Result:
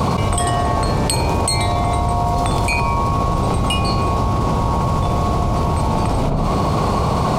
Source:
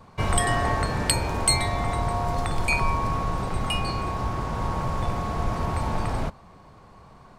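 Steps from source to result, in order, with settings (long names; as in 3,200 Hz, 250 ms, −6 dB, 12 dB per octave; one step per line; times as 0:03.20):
high-pass filter 41 Hz
parametric band 1,700 Hz −12 dB 0.59 octaves
on a send: feedback echo with a low-pass in the loop 68 ms, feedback 38%, low-pass 940 Hz, level −7.5 dB
on the sum: envelope flattener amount 100%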